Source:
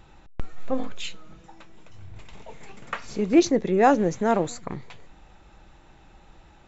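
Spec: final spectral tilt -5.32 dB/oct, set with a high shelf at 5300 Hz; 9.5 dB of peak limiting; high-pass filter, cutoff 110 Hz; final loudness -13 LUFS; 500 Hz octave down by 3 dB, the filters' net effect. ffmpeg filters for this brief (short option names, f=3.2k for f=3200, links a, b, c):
-af "highpass=110,equalizer=f=500:t=o:g=-4,highshelf=f=5.3k:g=-4,volume=16dB,alimiter=limit=0dB:level=0:latency=1"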